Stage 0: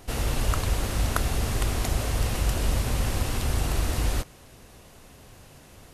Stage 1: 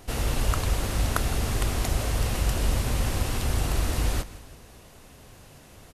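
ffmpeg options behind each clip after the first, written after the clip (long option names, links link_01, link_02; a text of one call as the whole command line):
ffmpeg -i in.wav -af "aecho=1:1:163|326|489|652:0.133|0.0627|0.0295|0.0138" out.wav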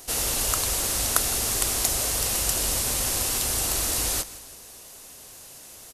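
ffmpeg -i in.wav -af "bass=frequency=250:gain=-10,treble=frequency=4000:gain=14" out.wav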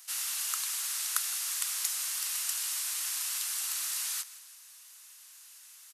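ffmpeg -i in.wav -af "highpass=frequency=1200:width=0.5412,highpass=frequency=1200:width=1.3066,volume=-7.5dB" out.wav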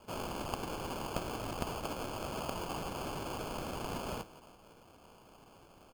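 ffmpeg -i in.wav -af "acrusher=samples=23:mix=1:aa=0.000001,volume=-5.5dB" out.wav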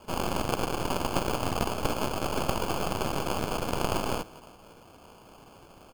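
ffmpeg -i in.wav -af "aeval=exprs='0.112*(cos(1*acos(clip(val(0)/0.112,-1,1)))-cos(1*PI/2))+0.0501*(cos(6*acos(clip(val(0)/0.112,-1,1)))-cos(6*PI/2))':channel_layout=same,volume=6.5dB" out.wav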